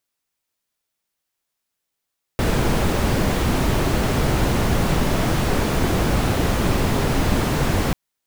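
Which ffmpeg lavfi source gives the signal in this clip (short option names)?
-f lavfi -i "anoisesrc=c=brown:a=0.556:d=5.54:r=44100:seed=1"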